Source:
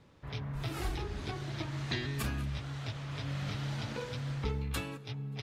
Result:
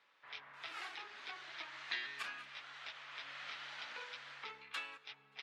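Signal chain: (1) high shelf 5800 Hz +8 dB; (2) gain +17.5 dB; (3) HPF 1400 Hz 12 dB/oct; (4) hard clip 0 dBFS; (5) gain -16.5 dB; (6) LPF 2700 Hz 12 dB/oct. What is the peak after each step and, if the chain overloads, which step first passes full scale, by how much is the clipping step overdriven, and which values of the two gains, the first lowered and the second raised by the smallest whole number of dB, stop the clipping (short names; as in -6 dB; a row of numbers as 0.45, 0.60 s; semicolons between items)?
-18.0, -0.5, -2.0, -2.0, -18.5, -24.0 dBFS; no overload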